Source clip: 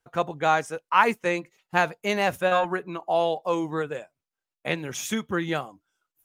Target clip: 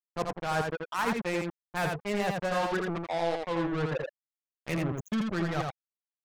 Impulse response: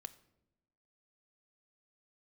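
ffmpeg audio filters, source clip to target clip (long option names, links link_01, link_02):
-af "afftfilt=real='re*gte(hypot(re,im),0.0794)':imag='im*gte(hypot(re,im),0.0794)':win_size=1024:overlap=0.75,agate=range=-33dB:threshold=-42dB:ratio=3:detection=peak,bass=frequency=250:gain=9,treble=frequency=4000:gain=0,areverse,acompressor=threshold=-36dB:ratio=4,areverse,acrusher=bits=5:mix=0:aa=0.5,aecho=1:1:83:0.668,adynamicequalizer=threshold=0.00251:dfrequency=3700:dqfactor=0.7:tfrequency=3700:tqfactor=0.7:attack=5:release=100:ratio=0.375:range=2:mode=cutabove:tftype=highshelf,volume=5dB"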